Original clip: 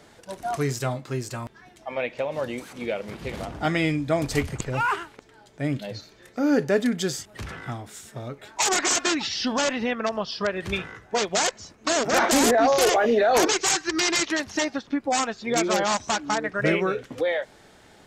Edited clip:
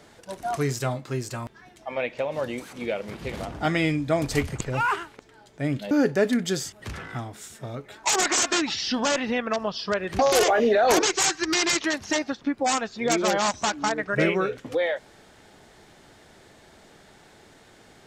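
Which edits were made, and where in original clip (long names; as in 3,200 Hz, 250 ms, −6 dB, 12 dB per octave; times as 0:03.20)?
0:05.91–0:06.44: remove
0:10.72–0:12.65: remove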